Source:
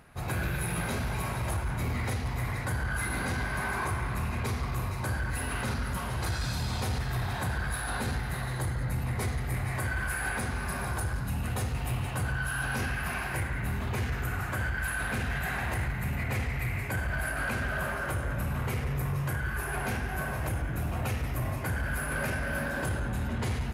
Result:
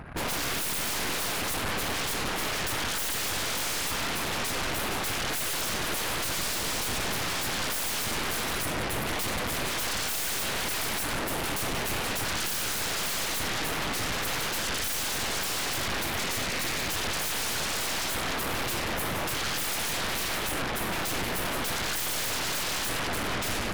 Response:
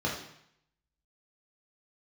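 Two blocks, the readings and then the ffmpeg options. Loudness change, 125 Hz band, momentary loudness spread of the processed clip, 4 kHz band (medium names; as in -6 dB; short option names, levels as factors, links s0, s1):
+3.5 dB, -9.5 dB, 1 LU, +14.0 dB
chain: -af "aeval=exprs='0.0668*sin(PI/2*6.31*val(0)/0.0668)':c=same,anlmdn=2.51,aeval=exprs='0.0668*(cos(1*acos(clip(val(0)/0.0668,-1,1)))-cos(1*PI/2))+0.0188*(cos(2*acos(clip(val(0)/0.0668,-1,1)))-cos(2*PI/2))':c=same,volume=0.596"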